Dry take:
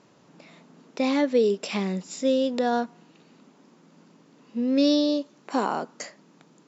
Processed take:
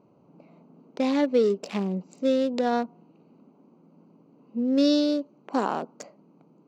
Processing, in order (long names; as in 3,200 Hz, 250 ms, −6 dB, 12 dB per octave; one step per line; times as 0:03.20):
adaptive Wiener filter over 25 samples
0:04.62–0:05.02: notch filter 2,400 Hz, Q 10